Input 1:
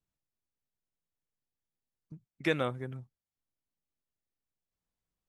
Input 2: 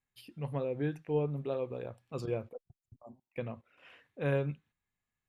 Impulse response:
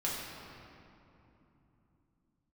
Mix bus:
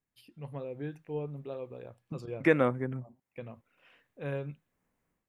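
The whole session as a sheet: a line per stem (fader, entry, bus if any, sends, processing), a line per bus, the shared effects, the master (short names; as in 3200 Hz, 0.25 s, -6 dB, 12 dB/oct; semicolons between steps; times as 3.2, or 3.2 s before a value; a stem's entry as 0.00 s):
-9.0 dB, 0.00 s, no send, ten-band EQ 125 Hz +5 dB, 250 Hz +10 dB, 500 Hz +7 dB, 1000 Hz +6 dB, 2000 Hz +9 dB, 4000 Hz -9 dB; AGC gain up to 15 dB
-5.0 dB, 0.00 s, no send, dry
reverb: off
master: dry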